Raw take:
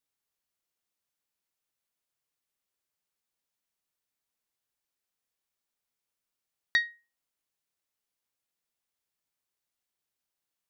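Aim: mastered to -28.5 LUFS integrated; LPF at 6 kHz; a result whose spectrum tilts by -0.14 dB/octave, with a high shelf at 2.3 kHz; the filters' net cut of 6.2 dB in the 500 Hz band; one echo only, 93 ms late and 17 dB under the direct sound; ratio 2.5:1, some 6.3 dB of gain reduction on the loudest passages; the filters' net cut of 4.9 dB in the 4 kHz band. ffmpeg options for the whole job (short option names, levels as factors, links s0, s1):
-af "lowpass=6000,equalizer=f=500:t=o:g=-8.5,highshelf=f=2300:g=4,equalizer=f=4000:t=o:g=-7.5,acompressor=threshold=0.0282:ratio=2.5,aecho=1:1:93:0.141,volume=2.37"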